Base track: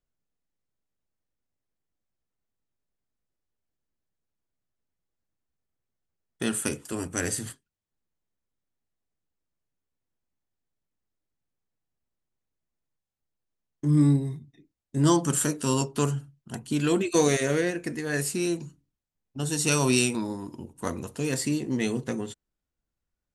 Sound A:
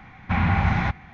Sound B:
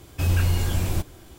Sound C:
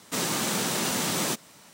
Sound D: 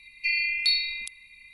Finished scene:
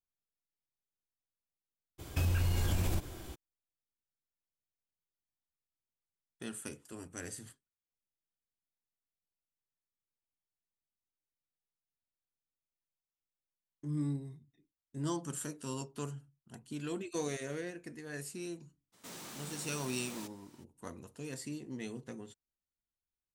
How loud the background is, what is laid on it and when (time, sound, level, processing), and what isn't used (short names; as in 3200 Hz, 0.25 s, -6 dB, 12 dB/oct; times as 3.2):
base track -15 dB
1.98 add B, fades 0.02 s + compressor, threshold -27 dBFS
18.92 add C -13.5 dB, fades 0.02 s + soft clip -31.5 dBFS
not used: A, D